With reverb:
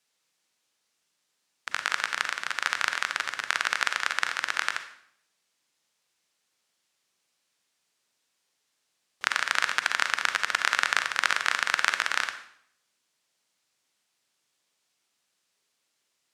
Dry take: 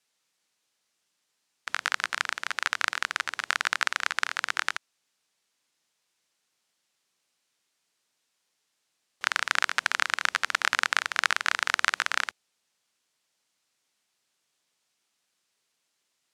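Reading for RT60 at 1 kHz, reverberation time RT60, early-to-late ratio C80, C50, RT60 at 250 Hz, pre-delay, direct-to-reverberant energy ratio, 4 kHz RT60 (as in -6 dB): 0.65 s, 0.70 s, 13.0 dB, 9.5 dB, 0.75 s, 35 ms, 8.0 dB, 0.60 s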